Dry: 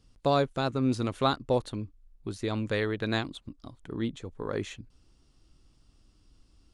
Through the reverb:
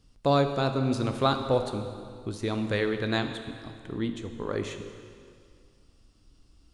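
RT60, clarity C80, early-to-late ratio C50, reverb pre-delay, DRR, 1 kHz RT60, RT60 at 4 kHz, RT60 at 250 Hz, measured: 2.1 s, 8.5 dB, 8.0 dB, 6 ms, 6.5 dB, 2.2 s, 2.0 s, 2.3 s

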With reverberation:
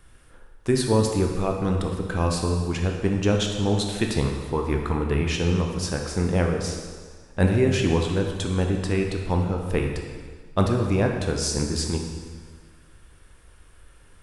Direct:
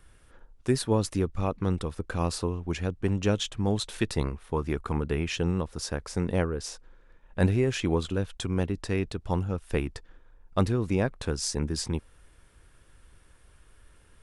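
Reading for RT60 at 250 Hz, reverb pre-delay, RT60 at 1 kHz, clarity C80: 1.7 s, 8 ms, 1.6 s, 5.5 dB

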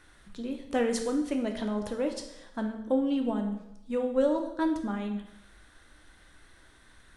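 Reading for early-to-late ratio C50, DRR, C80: 7.5 dB, 3.5 dB, 10.0 dB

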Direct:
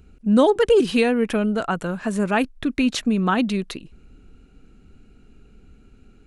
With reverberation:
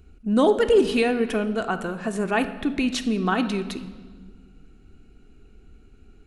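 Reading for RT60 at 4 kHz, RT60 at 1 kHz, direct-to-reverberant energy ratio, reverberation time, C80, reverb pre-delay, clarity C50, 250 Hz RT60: 1.3 s, 1.4 s, 7.0 dB, 1.6 s, 13.5 dB, 3 ms, 11.5 dB, 2.3 s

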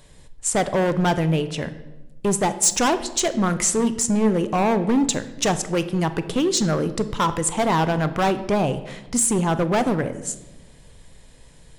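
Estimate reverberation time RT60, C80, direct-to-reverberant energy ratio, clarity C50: 1.1 s, 15.5 dB, 11.0 dB, 13.5 dB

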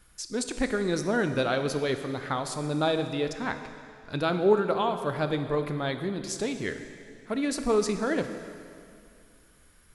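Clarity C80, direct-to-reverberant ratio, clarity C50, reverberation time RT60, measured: 9.5 dB, 7.5 dB, 8.5 dB, 2.4 s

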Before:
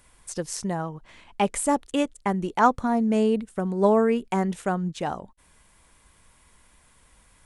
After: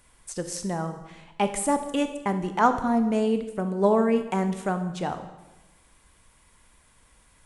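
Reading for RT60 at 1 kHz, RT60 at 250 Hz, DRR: 1.0 s, 1.2 s, 8.0 dB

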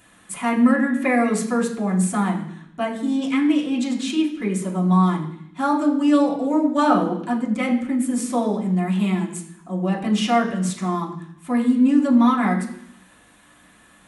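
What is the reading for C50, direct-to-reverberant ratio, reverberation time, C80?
8.5 dB, -4.5 dB, 0.70 s, 10.5 dB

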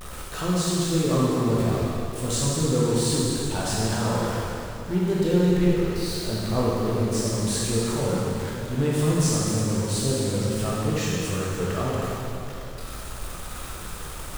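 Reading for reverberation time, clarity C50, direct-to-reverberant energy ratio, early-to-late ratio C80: 2.8 s, -3.5 dB, -6.5 dB, -1.0 dB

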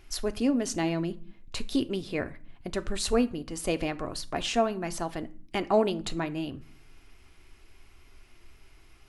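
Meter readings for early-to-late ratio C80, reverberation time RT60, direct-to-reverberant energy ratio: 23.5 dB, 0.45 s, 9.5 dB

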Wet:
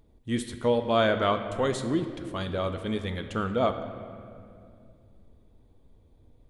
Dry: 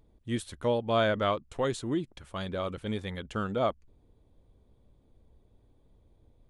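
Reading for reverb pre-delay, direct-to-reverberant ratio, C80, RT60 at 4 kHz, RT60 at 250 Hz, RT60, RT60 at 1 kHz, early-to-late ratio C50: 4 ms, 7.0 dB, 10.0 dB, 1.6 s, 3.5 s, 2.3 s, 2.1 s, 9.0 dB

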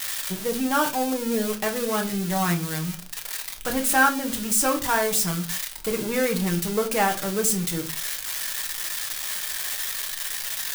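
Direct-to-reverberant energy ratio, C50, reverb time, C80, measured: 2.0 dB, 14.5 dB, no single decay rate, 20.5 dB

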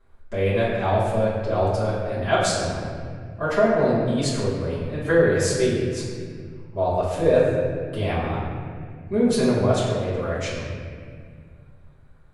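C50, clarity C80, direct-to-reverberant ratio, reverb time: 0.0 dB, 2.0 dB, -11.5 dB, 2.0 s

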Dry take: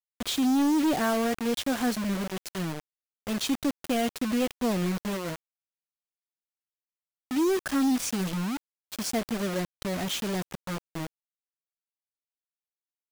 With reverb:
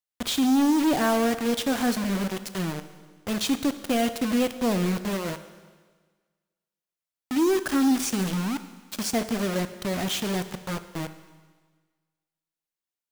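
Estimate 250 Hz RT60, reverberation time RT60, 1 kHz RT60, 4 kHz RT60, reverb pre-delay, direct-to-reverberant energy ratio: 1.5 s, 1.5 s, 1.5 s, 1.5 s, 20 ms, 10.5 dB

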